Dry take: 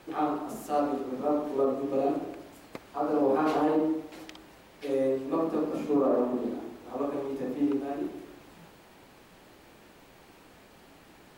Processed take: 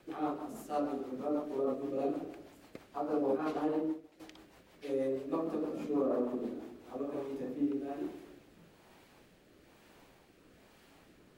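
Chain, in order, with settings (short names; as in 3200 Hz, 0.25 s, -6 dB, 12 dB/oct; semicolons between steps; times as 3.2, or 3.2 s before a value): rotary speaker horn 6.3 Hz, later 1.1 Hz, at 6.39; flange 0.7 Hz, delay 8.6 ms, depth 6.4 ms, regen -88%; 3.26–4.2 upward expander 1.5:1, over -51 dBFS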